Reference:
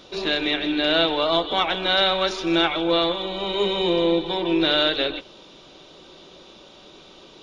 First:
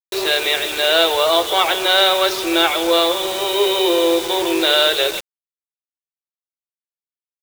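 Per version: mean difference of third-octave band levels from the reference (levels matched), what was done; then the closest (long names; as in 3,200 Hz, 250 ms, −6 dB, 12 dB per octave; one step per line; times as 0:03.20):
11.5 dB: in parallel at −6.5 dB: soft clipping −19 dBFS, distortion −11 dB
on the sum: linear-phase brick-wall high-pass 330 Hz
bit reduction 5 bits
level +3.5 dB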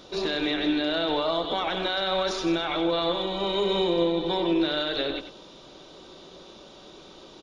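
2.5 dB: brickwall limiter −16 dBFS, peak gain reduction 9.5 dB
parametric band 2,600 Hz −5 dB 0.91 octaves
single-tap delay 94 ms −10 dB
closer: second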